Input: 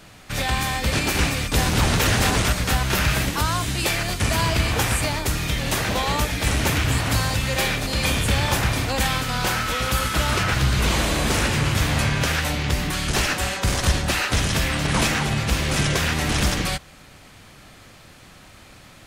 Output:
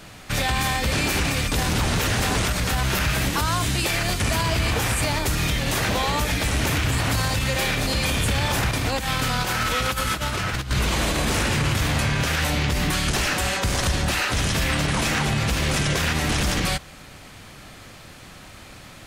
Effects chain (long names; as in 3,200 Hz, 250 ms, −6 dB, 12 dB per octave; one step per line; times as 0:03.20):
0:08.71–0:10.71: compressor whose output falls as the input rises −25 dBFS, ratio −0.5
brickwall limiter −17 dBFS, peak gain reduction 9.5 dB
level +3.5 dB